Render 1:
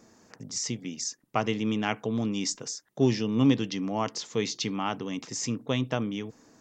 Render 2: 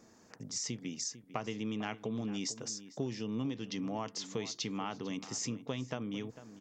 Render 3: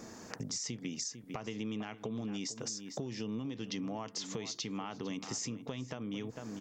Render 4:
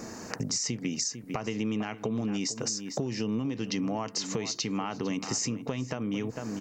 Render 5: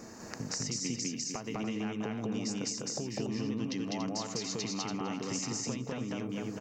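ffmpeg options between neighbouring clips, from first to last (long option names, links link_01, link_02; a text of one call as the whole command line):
ffmpeg -i in.wav -filter_complex "[0:a]acompressor=threshold=-30dB:ratio=6,asplit=2[link_01][link_02];[link_02]adelay=449,volume=-14dB,highshelf=frequency=4000:gain=-10.1[link_03];[link_01][link_03]amix=inputs=2:normalize=0,volume=-3.5dB" out.wav
ffmpeg -i in.wav -af "alimiter=level_in=5dB:limit=-24dB:level=0:latency=1:release=402,volume=-5dB,acompressor=threshold=-50dB:ratio=4,volume=12dB" out.wav
ffmpeg -i in.wav -af "bandreject=frequency=3400:width=5.6,volume=8dB" out.wav
ffmpeg -i in.wav -af "aecho=1:1:201.2|285.7:1|0.447,volume=-7dB" out.wav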